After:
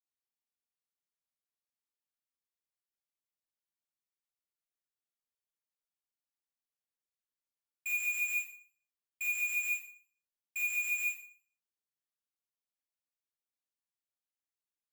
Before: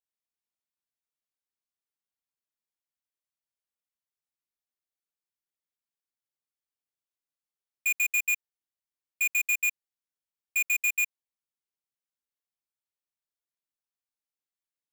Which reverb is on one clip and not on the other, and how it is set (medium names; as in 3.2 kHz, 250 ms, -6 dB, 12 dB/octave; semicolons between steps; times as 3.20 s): Schroeder reverb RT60 0.48 s, combs from 27 ms, DRR -3.5 dB; trim -11.5 dB